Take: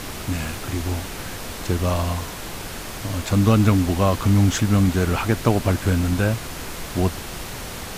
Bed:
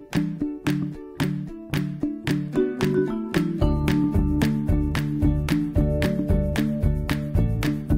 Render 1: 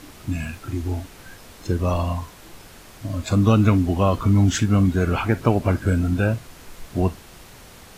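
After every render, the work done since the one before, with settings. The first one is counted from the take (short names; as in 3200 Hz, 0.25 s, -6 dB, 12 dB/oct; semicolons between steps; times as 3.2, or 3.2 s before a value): noise print and reduce 12 dB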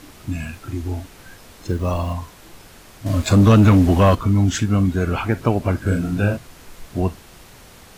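1.68–2.13 level-crossing sampler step -43 dBFS; 3.06–4.15 sample leveller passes 2; 5.82–6.37 doubler 40 ms -4 dB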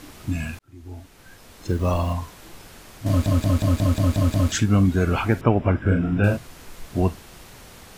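0.59–1.86 fade in; 3.08 stutter in place 0.18 s, 8 plays; 5.41–6.24 polynomial smoothing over 25 samples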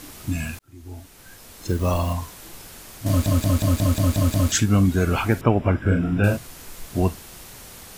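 high shelf 6000 Hz +10 dB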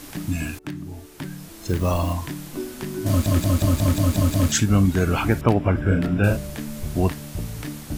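add bed -9 dB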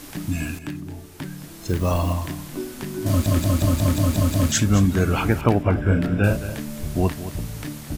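echo 0.218 s -13 dB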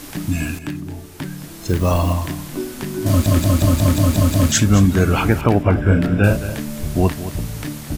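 gain +4.5 dB; limiter -2 dBFS, peak gain reduction 3 dB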